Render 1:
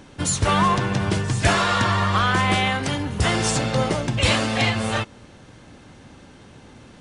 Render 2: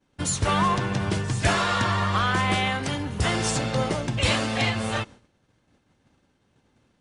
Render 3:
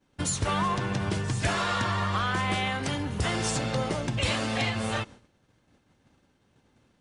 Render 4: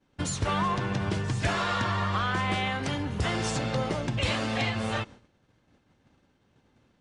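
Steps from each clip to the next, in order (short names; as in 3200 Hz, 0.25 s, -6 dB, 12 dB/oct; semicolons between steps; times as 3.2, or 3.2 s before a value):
expander -34 dBFS; gain -3.5 dB
compressor 2:1, threshold -27 dBFS, peak gain reduction 6.5 dB
air absorption 52 m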